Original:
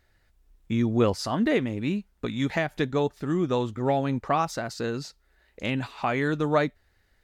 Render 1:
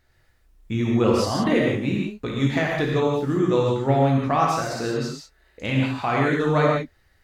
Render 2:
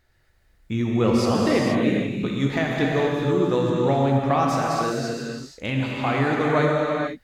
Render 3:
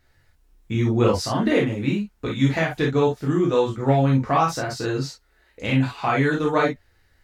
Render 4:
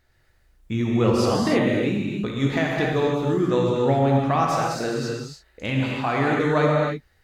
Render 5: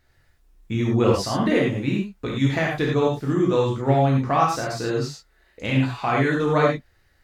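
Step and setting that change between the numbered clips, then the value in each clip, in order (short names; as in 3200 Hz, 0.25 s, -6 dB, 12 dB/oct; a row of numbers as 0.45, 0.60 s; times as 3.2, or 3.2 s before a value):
non-linear reverb, gate: 200, 510, 80, 330, 130 ms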